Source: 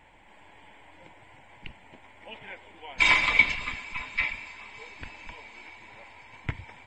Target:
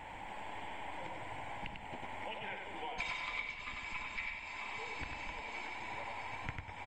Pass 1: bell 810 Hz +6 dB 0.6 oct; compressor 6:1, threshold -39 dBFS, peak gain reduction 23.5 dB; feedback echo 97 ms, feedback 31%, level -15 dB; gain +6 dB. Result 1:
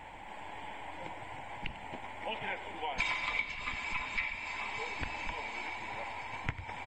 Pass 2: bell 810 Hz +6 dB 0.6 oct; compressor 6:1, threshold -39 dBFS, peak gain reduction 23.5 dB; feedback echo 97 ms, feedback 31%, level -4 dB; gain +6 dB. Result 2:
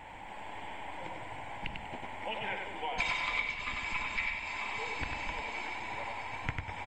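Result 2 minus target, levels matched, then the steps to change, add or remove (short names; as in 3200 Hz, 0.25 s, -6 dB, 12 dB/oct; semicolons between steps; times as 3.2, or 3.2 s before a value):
compressor: peak gain reduction -7 dB
change: compressor 6:1, threshold -47.5 dBFS, peak gain reduction 30.5 dB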